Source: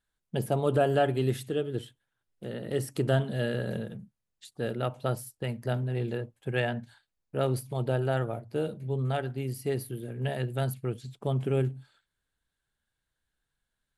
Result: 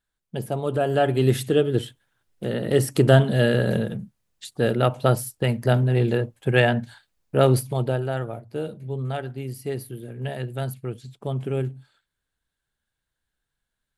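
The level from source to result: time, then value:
0:00.76 +0.5 dB
0:01.41 +10.5 dB
0:07.59 +10.5 dB
0:08.07 +1 dB

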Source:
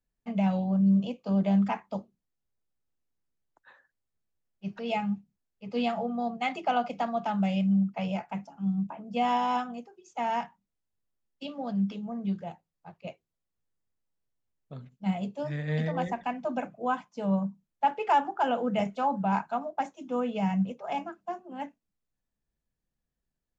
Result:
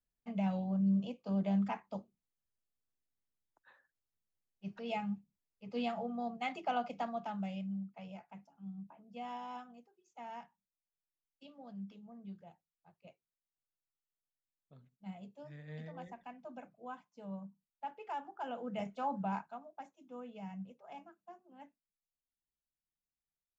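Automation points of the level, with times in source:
0:07.03 −8 dB
0:07.90 −17.5 dB
0:18.17 −17.5 dB
0:19.21 −7.5 dB
0:19.62 −18 dB

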